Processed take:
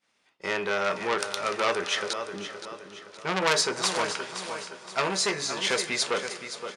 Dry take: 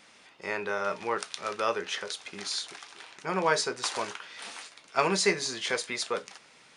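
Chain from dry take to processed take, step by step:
0:04.31–0:05.61: tuned comb filter 72 Hz, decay 0.16 s, harmonics all, mix 80%
downward expander −43 dBFS
0:02.13–0:03.13: Butterworth low-pass 510 Hz 96 dB per octave
repeating echo 520 ms, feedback 41%, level −11.5 dB
on a send at −18 dB: convolution reverb RT60 5.1 s, pre-delay 88 ms
on the sum: saturating transformer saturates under 3,900 Hz
level +6 dB

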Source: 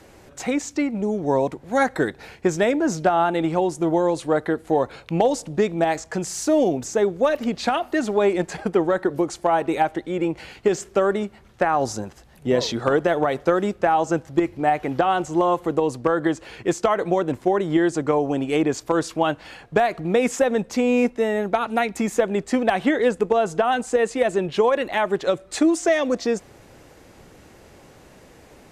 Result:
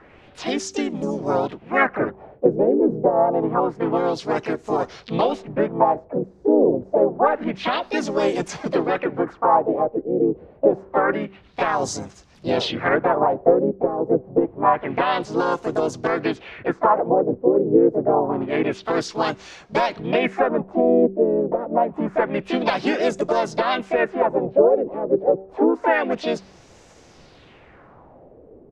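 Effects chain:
pitch-shifted copies added −4 semitones −6 dB, +5 semitones −3 dB, +7 semitones −11 dB
auto-filter low-pass sine 0.27 Hz 430–6,700 Hz
hum removal 192.5 Hz, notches 2
level −4 dB

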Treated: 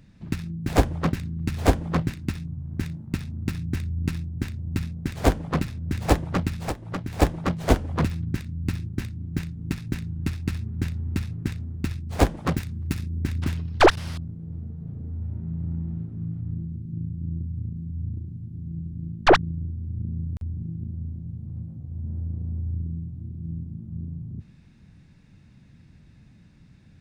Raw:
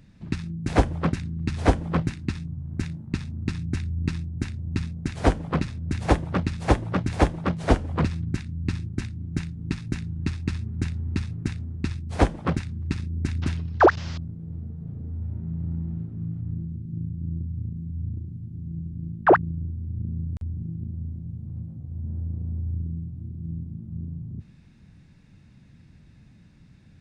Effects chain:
stylus tracing distortion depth 0.36 ms
0:06.59–0:07.22: downward compressor 12 to 1, threshold −26 dBFS, peak gain reduction 15 dB
0:12.37–0:13.19: high-shelf EQ 7,300 Hz +7.5 dB

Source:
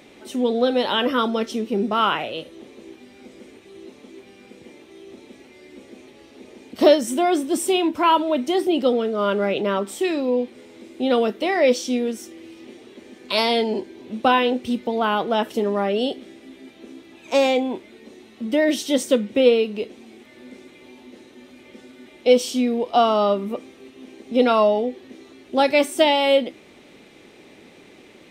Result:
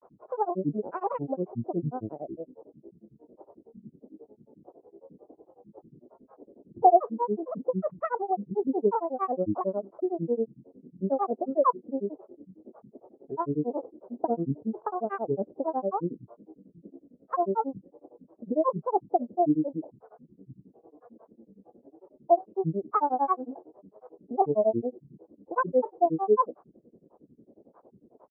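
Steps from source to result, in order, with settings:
Chebyshev low-pass filter 650 Hz, order 4
spectral tilt +2.5 dB per octave
granular cloud, grains 11 per second, spray 34 ms, pitch spread up and down by 12 semitones

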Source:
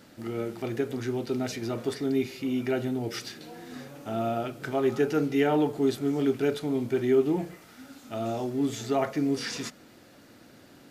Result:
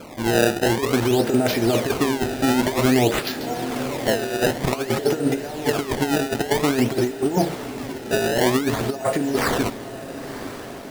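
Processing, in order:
parametric band 680 Hz +8.5 dB 1.2 octaves
compressor whose output falls as the input rises −27 dBFS, ratio −0.5
sample-and-hold swept by an LFO 23×, swing 160% 0.52 Hz
on a send: feedback delay with all-pass diffusion 975 ms, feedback 47%, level −13 dB
on the sum: level +7.5 dB

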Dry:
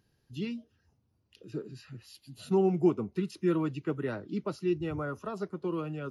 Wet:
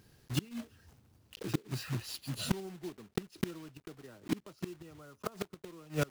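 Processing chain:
one scale factor per block 3 bits
gate with flip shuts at −29 dBFS, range −28 dB
level +9.5 dB

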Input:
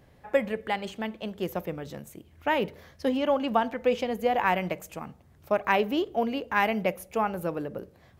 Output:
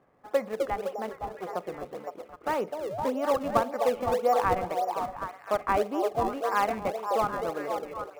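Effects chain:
0:01.09–0:01.49: lower of the sound and its delayed copy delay 2 ms
loudspeaker in its box 240–2,200 Hz, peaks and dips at 470 Hz +3 dB, 740 Hz +5 dB, 1,200 Hz +10 dB, 1,800 Hz −3 dB
0:02.89–0:03.09: sound drawn into the spectrogram rise 520–1,100 Hz −29 dBFS
echo through a band-pass that steps 256 ms, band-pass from 480 Hz, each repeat 0.7 octaves, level −1.5 dB
in parallel at −10 dB: sample-and-hold swept by an LFO 33×, swing 160% 1.8 Hz
on the sum: level −6 dB

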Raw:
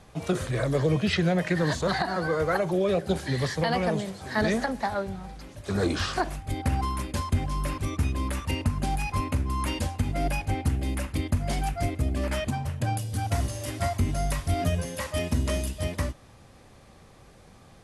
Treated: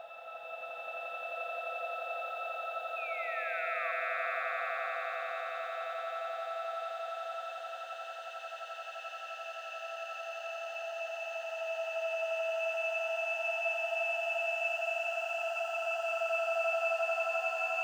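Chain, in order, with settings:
pitch shifter gated in a rhythm +7 semitones, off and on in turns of 469 ms
linear-phase brick-wall band-pass 480–9,100 Hz
tilt shelving filter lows −8 dB
in parallel at +0.5 dB: output level in coarse steps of 10 dB
on the sum: resonances in every octave E, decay 0.18 s
upward compression, threshold −46 dBFS
log-companded quantiser 8 bits
extreme stretch with random phases 26×, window 0.50 s, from 0:02.91
sound drawn into the spectrogram fall, 0:02.96–0:03.92, 1,100–2,600 Hz −41 dBFS
echo that builds up and dies away 87 ms, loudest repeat 8, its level −3.5 dB
on a send at −17.5 dB: convolution reverb RT60 1.1 s, pre-delay 46 ms
on the sum: level −2 dB

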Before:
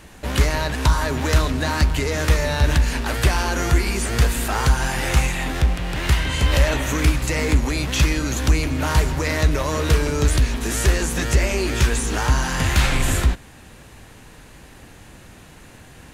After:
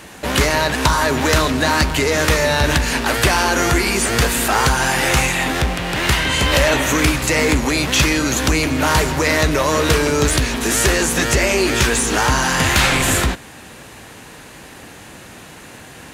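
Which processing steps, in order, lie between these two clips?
high-pass filter 220 Hz 6 dB per octave
in parallel at −4.5 dB: soft clipping −18.5 dBFS, distortion −15 dB
on the sum: level +4.5 dB

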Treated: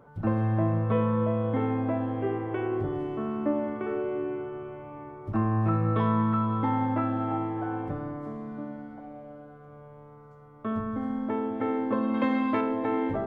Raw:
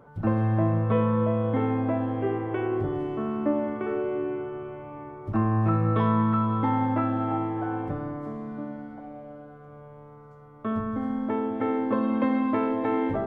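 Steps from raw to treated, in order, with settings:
0:12.14–0:12.61: high-shelf EQ 2,000 Hz +10 dB
level −2 dB

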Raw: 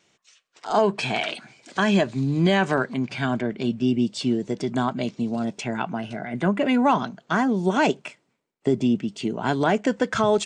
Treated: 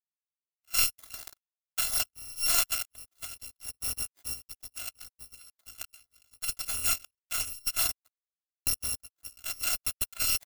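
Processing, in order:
samples in bit-reversed order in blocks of 256 samples
power curve on the samples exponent 3
level +2.5 dB

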